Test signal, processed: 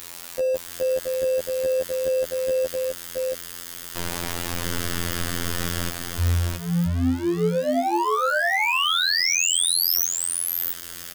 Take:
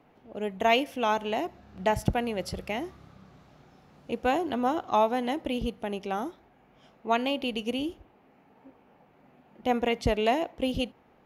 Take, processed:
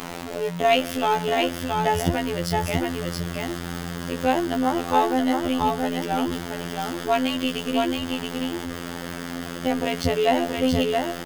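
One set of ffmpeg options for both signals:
-af "aeval=exprs='val(0)+0.5*0.0282*sgn(val(0))':c=same,afftfilt=real='hypot(re,im)*cos(PI*b)':imag='0':win_size=2048:overlap=0.75,aecho=1:1:674:0.668,volume=5.5dB"

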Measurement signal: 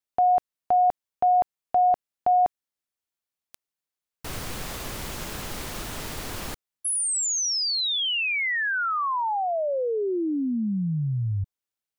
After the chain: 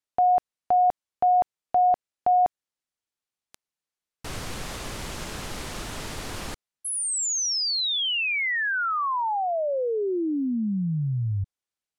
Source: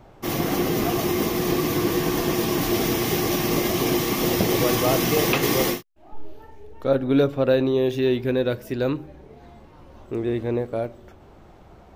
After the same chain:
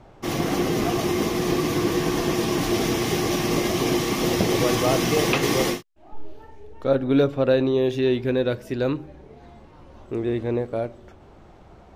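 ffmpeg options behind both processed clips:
-af "lowpass=10k"

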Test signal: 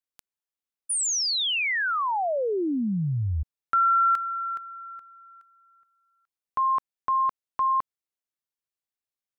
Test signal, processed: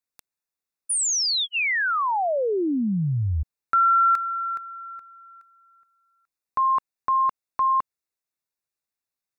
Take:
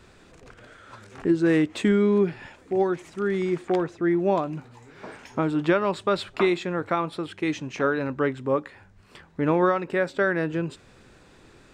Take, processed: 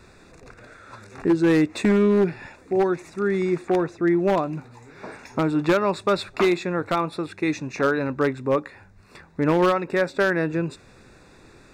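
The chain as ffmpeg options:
-af "asuperstop=centerf=3100:order=8:qfactor=4.9,aeval=exprs='0.188*(abs(mod(val(0)/0.188+3,4)-2)-1)':c=same,volume=2.5dB"

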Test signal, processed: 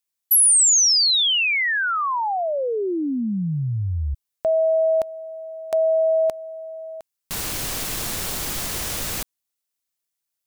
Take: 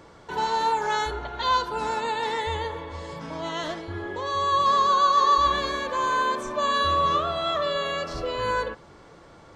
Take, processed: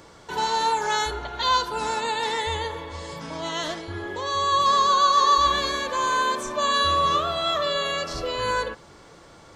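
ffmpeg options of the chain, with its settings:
-af "highshelf=f=3.6k:g=10"

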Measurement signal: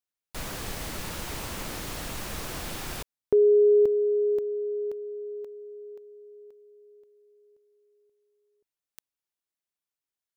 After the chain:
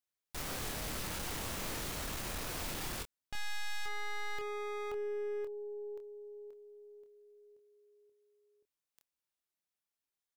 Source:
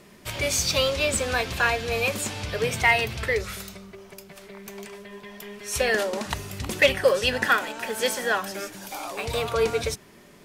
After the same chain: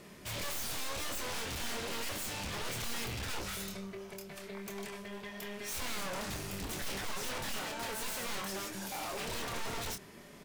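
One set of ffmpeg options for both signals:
-filter_complex "[0:a]aeval=exprs='(tanh(31.6*val(0)+0.65)-tanh(0.65))/31.6':c=same,aeval=exprs='0.0178*(abs(mod(val(0)/0.0178+3,4)-2)-1)':c=same,asplit=2[a][b];[b]adelay=26,volume=-6.5dB[c];[a][c]amix=inputs=2:normalize=0,volume=1dB"

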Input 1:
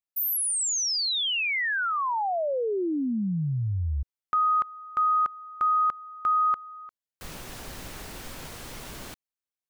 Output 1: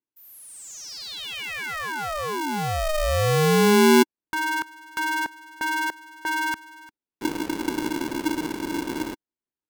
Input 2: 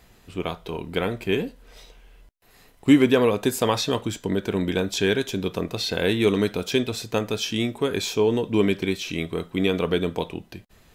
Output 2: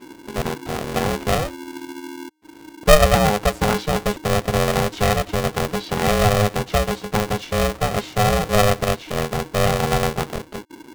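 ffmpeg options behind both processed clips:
-af "aemphasis=mode=reproduction:type=riaa,aeval=exprs='val(0)*sgn(sin(2*PI*310*n/s))':c=same,volume=-2dB"

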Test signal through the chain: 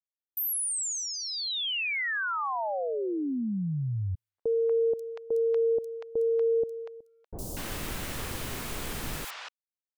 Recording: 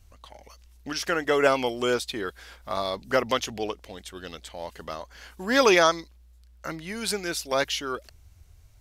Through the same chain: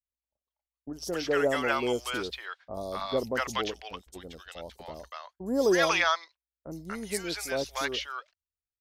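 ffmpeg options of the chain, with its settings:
-filter_complex "[0:a]agate=range=-47dB:threshold=-40dB:ratio=16:detection=peak,acrossover=split=740|5300[a][b][c];[c]adelay=60[d];[b]adelay=240[e];[a][e][d]amix=inputs=3:normalize=0,volume=-2.5dB"

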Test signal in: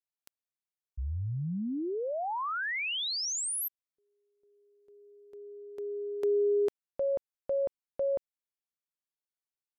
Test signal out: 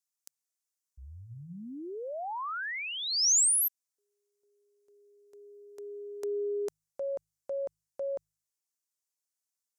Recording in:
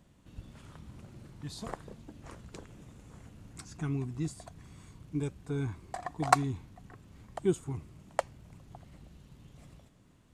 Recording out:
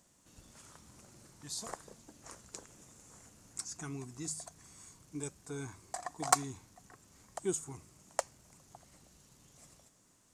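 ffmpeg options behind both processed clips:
-filter_complex "[0:a]highshelf=f=4.6k:t=q:w=1.5:g=11.5,asplit=2[a][b];[b]highpass=f=720:p=1,volume=12dB,asoftclip=type=tanh:threshold=0dB[c];[a][c]amix=inputs=2:normalize=0,lowpass=f=6.2k:p=1,volume=-6dB,bandreject=f=52:t=h:w=4,bandreject=f=104:t=h:w=4,bandreject=f=156:t=h:w=4,volume=-8dB"

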